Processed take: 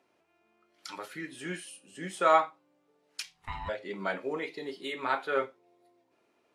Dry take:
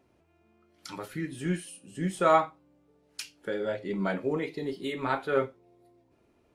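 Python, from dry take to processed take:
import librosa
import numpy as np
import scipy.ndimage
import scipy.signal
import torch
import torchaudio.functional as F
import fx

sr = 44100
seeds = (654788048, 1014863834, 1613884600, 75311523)

y = fx.weighting(x, sr, curve='A')
y = fx.ring_mod(y, sr, carrier_hz=460.0, at=(3.22, 3.68), fade=0.02)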